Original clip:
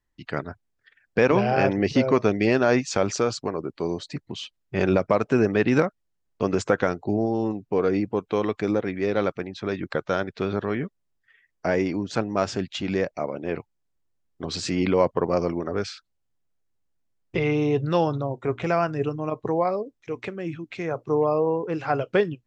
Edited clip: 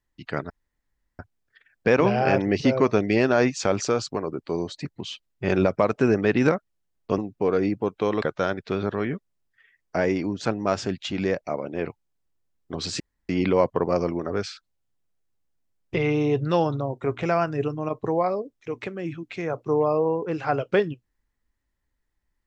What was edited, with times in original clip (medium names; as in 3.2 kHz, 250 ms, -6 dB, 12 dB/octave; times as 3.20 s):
0.50 s: insert room tone 0.69 s
6.49–7.49 s: delete
8.53–9.92 s: delete
14.70 s: insert room tone 0.29 s